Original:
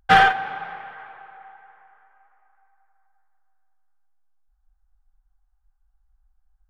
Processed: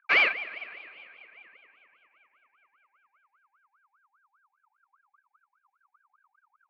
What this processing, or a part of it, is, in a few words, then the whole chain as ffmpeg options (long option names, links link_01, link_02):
voice changer toy: -af "aeval=exprs='val(0)*sin(2*PI*1200*n/s+1200*0.35/5*sin(2*PI*5*n/s))':channel_layout=same,highpass=600,equalizer=frequency=820:width_type=q:width=4:gain=-9,equalizer=frequency=1200:width_type=q:width=4:gain=9,equalizer=frequency=2300:width_type=q:width=4:gain=9,equalizer=frequency=3600:width_type=q:width=4:gain=-7,lowpass=frequency=5000:width=0.5412,lowpass=frequency=5000:width=1.3066,volume=-7.5dB"